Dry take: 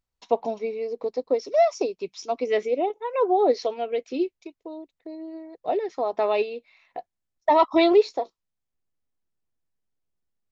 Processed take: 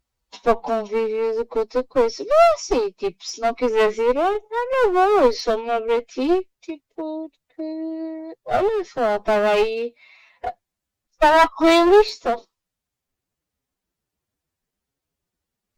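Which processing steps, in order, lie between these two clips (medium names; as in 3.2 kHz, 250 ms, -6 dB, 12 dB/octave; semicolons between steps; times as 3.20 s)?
one-sided clip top -30 dBFS; time stretch by phase-locked vocoder 1.5×; trim +8.5 dB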